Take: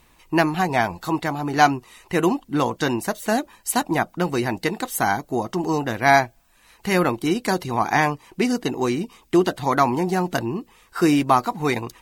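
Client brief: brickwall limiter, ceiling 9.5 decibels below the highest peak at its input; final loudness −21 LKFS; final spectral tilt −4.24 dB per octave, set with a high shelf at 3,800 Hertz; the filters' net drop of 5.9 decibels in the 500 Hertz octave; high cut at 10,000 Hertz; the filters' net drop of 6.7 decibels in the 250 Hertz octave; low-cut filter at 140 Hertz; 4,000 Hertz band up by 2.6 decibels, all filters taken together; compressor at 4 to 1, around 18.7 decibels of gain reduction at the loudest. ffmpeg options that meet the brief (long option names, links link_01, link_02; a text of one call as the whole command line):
ffmpeg -i in.wav -af "highpass=140,lowpass=10000,equalizer=frequency=250:width_type=o:gain=-6,equalizer=frequency=500:width_type=o:gain=-6.5,highshelf=frequency=3800:gain=-8.5,equalizer=frequency=4000:width_type=o:gain=8.5,acompressor=threshold=-36dB:ratio=4,volume=19.5dB,alimiter=limit=-8.5dB:level=0:latency=1" out.wav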